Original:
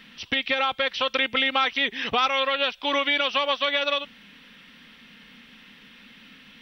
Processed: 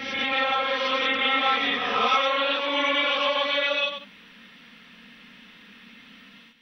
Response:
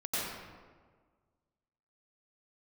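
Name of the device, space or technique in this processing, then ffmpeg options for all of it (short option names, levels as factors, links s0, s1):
reverse reverb: -filter_complex "[0:a]areverse[s0];[1:a]atrim=start_sample=2205[s1];[s0][s1]afir=irnorm=-1:irlink=0,areverse,lowshelf=f=250:g=-5,volume=0.562"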